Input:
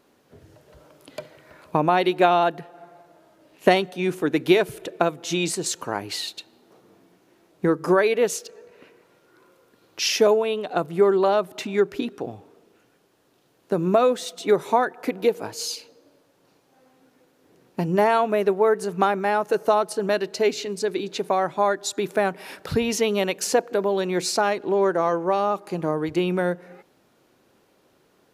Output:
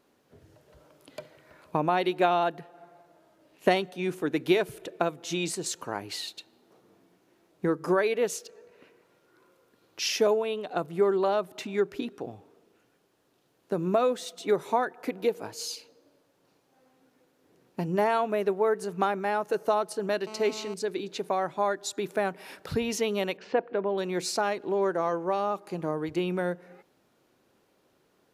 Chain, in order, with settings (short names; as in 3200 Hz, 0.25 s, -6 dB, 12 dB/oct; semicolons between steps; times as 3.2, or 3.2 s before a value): 20.27–20.74 GSM buzz -36 dBFS; 23.37–23.98 LPF 3000 Hz 24 dB/oct; gain -6 dB